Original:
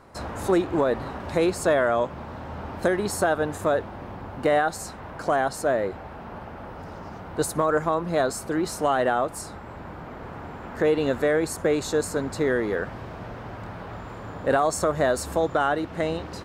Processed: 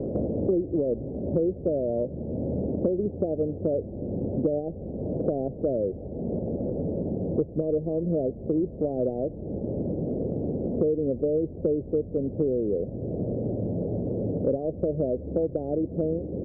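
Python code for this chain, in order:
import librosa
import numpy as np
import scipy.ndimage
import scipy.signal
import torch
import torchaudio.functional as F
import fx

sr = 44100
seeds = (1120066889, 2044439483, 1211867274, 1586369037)

y = scipy.signal.sosfilt(scipy.signal.butter(8, 560.0, 'lowpass', fs=sr, output='sos'), x)
y = fx.band_squash(y, sr, depth_pct=100)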